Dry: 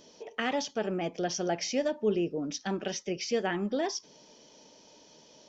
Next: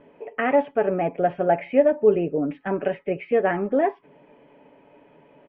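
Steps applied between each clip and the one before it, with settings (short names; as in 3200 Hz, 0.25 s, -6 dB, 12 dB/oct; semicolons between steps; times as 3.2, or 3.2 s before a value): dynamic EQ 590 Hz, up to +6 dB, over -41 dBFS, Q 1.2; steep low-pass 2500 Hz 48 dB/oct; comb 7.1 ms, depth 41%; gain +5.5 dB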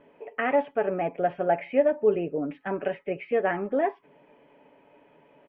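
low shelf 460 Hz -5 dB; gain -2 dB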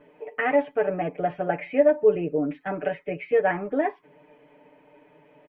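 comb 6.6 ms, depth 75%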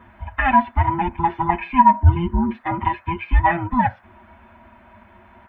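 band inversion scrambler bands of 500 Hz; band noise 590–1800 Hz -62 dBFS; ending taper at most 470 dB/s; gain +6 dB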